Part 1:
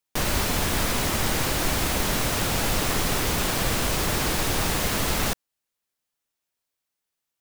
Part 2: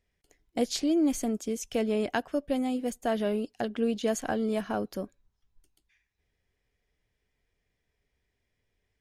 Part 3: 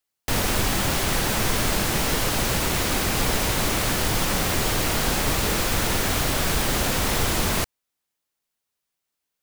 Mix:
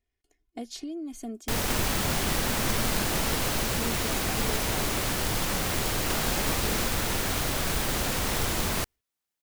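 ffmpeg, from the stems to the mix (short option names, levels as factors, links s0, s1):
-filter_complex "[0:a]adelay=1550,volume=0.891,asplit=3[s0][s1][s2];[s0]atrim=end=3.63,asetpts=PTS-STARTPTS,afade=t=out:st=3.626:d=0.004:c=hsin[s3];[s1]atrim=start=3.63:end=6.1,asetpts=PTS-STARTPTS,volume=0[s4];[s2]atrim=start=6.1,asetpts=PTS-STARTPTS,afade=t=in:d=0.004:c=hsin[s5];[s3][s4][s5]concat=n=3:v=0:a=1[s6];[1:a]aecho=1:1:2.8:0.8,acompressor=threshold=0.0501:ratio=4,volume=0.376[s7];[2:a]acrusher=bits=2:mode=log:mix=0:aa=0.000001,adelay=1200,volume=0.531[s8];[s6][s7]amix=inputs=2:normalize=0,equalizer=f=230:w=6.9:g=8,acompressor=threshold=0.0282:ratio=6,volume=1[s9];[s8][s9]amix=inputs=2:normalize=0"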